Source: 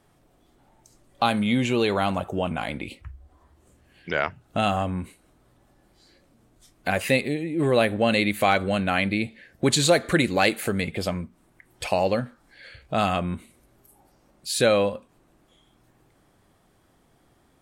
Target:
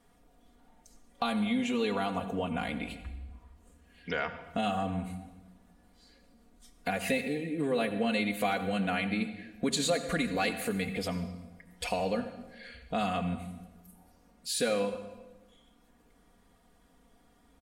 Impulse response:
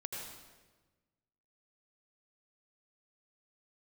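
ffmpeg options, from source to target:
-filter_complex "[0:a]aecho=1:1:4.2:0.98,acompressor=threshold=-25dB:ratio=2,asplit=2[link_01][link_02];[1:a]atrim=start_sample=2205,asetrate=48510,aresample=44100,lowshelf=frequency=120:gain=10.5[link_03];[link_02][link_03]afir=irnorm=-1:irlink=0,volume=-5.5dB[link_04];[link_01][link_04]amix=inputs=2:normalize=0,volume=-8.5dB"

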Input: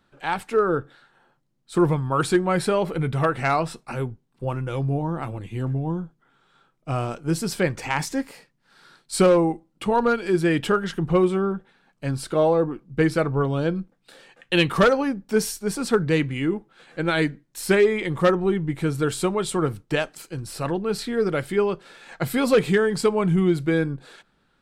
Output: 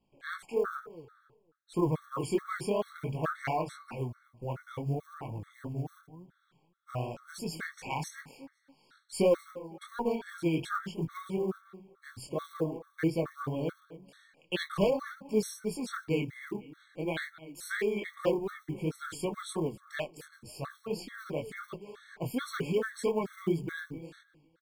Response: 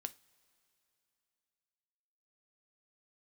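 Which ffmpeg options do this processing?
-filter_complex "[0:a]flanger=delay=18:depth=7.6:speed=2.8,asplit=2[link_01][link_02];[link_02]adelay=253,lowpass=frequency=4000:poles=1,volume=-17dB,asplit=2[link_03][link_04];[link_04]adelay=253,lowpass=frequency=4000:poles=1,volume=0.27,asplit=2[link_05][link_06];[link_06]adelay=253,lowpass=frequency=4000:poles=1,volume=0.27[link_07];[link_03][link_05][link_07]amix=inputs=3:normalize=0[link_08];[link_01][link_08]amix=inputs=2:normalize=0,acrusher=bits=8:mode=log:mix=0:aa=0.000001,afftfilt=real='re*gt(sin(2*PI*2.3*pts/sr)*(1-2*mod(floor(b*sr/1024/1100),2)),0)':imag='im*gt(sin(2*PI*2.3*pts/sr)*(1-2*mod(floor(b*sr/1024/1100),2)),0)':win_size=1024:overlap=0.75,volume=-5.5dB"

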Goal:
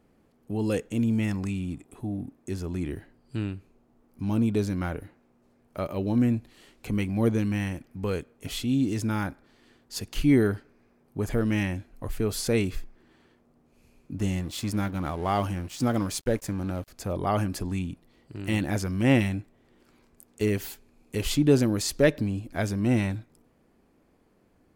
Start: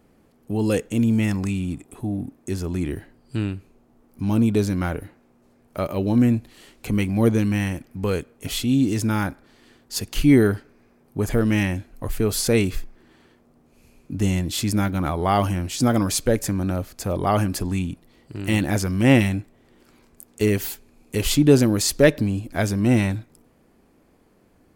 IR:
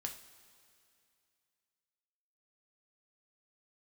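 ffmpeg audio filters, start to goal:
-filter_complex "[0:a]highshelf=frequency=6900:gain=-4.5,asettb=1/sr,asplit=3[link_01][link_02][link_03];[link_01]atrim=end=14.184[link_04];[link_02]atrim=start=14.18:end=16.88,asetpts=PTS-STARTPTS,afade=type=in:duration=0.004:curve=qsin,afade=type=out:start_time=2.696:duration=0.004:curve=qsin,aeval=exprs='sgn(val(0))*max(abs(val(0))-0.0119,0)':channel_layout=same[link_05];[link_03]atrim=start=16.876[link_06];[link_04][link_05]acrossfade=duration=0.004:curve1=hsin:curve2=qsin[link_07];[link_07][link_06]acrossfade=duration=0.004:curve1=qsin:curve2=hsin,volume=-5.5dB"

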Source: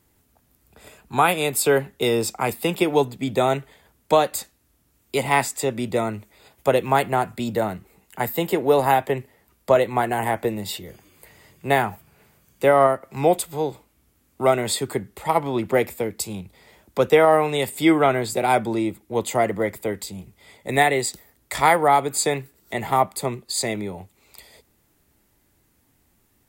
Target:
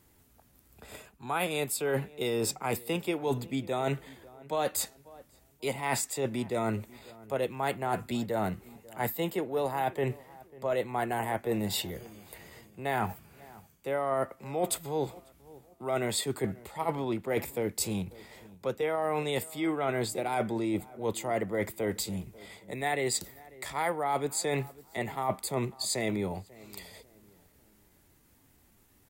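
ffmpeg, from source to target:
ffmpeg -i in.wav -filter_complex "[0:a]areverse,acompressor=threshold=-27dB:ratio=10,areverse,atempo=0.91,asplit=2[link_01][link_02];[link_02]adelay=543,lowpass=frequency=1500:poles=1,volume=-20.5dB,asplit=2[link_03][link_04];[link_04]adelay=543,lowpass=frequency=1500:poles=1,volume=0.36,asplit=2[link_05][link_06];[link_06]adelay=543,lowpass=frequency=1500:poles=1,volume=0.36[link_07];[link_01][link_03][link_05][link_07]amix=inputs=4:normalize=0" out.wav

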